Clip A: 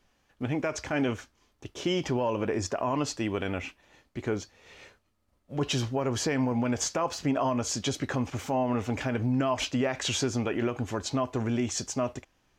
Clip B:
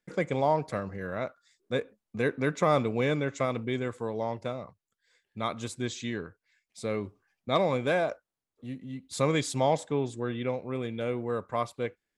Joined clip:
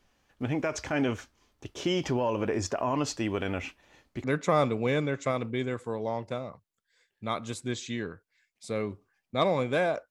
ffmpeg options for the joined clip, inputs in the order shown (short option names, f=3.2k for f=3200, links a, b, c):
-filter_complex "[0:a]apad=whole_dur=10.1,atrim=end=10.1,atrim=end=4.242[a];[1:a]atrim=start=2.378:end=8.24[b];[a][b]acrossfade=d=0.004:c1=hsin:c2=hsin"